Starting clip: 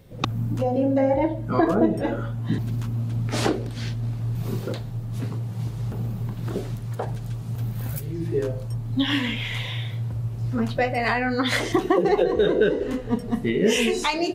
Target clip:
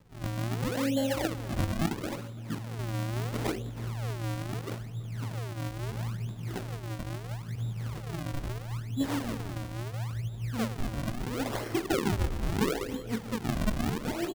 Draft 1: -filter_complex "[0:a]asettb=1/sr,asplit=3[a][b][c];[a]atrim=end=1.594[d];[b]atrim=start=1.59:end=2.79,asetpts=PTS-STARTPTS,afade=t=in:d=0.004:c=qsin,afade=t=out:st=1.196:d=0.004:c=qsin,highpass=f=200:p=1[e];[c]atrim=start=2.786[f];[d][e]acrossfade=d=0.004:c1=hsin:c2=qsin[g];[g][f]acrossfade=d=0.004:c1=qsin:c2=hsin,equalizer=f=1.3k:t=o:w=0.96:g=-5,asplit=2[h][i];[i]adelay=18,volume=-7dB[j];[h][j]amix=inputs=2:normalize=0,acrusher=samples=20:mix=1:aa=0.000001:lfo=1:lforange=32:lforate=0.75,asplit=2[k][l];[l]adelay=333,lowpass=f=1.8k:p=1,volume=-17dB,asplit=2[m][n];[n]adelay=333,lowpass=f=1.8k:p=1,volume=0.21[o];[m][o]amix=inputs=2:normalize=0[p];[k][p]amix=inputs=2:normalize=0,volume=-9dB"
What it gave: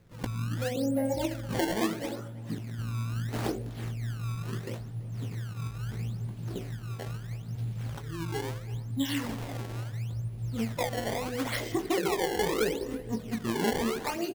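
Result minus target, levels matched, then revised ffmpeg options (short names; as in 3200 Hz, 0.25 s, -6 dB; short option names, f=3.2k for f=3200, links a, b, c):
decimation with a swept rate: distortion -8 dB
-filter_complex "[0:a]asettb=1/sr,asplit=3[a][b][c];[a]atrim=end=1.594[d];[b]atrim=start=1.59:end=2.79,asetpts=PTS-STARTPTS,afade=t=in:d=0.004:c=qsin,afade=t=out:st=1.196:d=0.004:c=qsin,highpass=f=200:p=1[e];[c]atrim=start=2.786[f];[d][e]acrossfade=d=0.004:c1=hsin:c2=qsin[g];[g][f]acrossfade=d=0.004:c1=qsin:c2=hsin,equalizer=f=1.3k:t=o:w=0.96:g=-5,asplit=2[h][i];[i]adelay=18,volume=-7dB[j];[h][j]amix=inputs=2:normalize=0,acrusher=samples=58:mix=1:aa=0.000001:lfo=1:lforange=92.8:lforate=0.75,asplit=2[k][l];[l]adelay=333,lowpass=f=1.8k:p=1,volume=-17dB,asplit=2[m][n];[n]adelay=333,lowpass=f=1.8k:p=1,volume=0.21[o];[m][o]amix=inputs=2:normalize=0[p];[k][p]amix=inputs=2:normalize=0,volume=-9dB"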